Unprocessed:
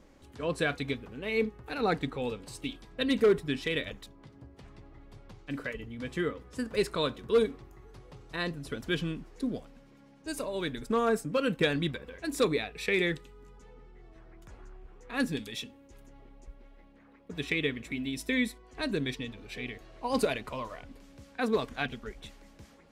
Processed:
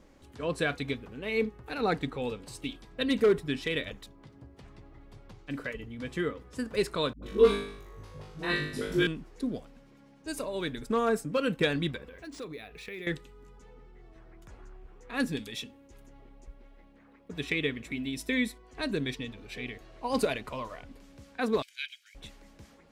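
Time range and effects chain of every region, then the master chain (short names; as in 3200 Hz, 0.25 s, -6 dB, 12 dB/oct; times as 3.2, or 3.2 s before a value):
7.13–9.07 dispersion highs, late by 95 ms, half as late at 320 Hz + flutter echo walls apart 3.4 m, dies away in 0.62 s
12.08–13.07 notch 890 Hz, Q 20 + compressor 2.5:1, threshold -44 dBFS + decimation joined by straight lines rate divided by 3×
21.62–22.15 steep high-pass 2100 Hz + comb 1.3 ms, depth 56%
whole clip: dry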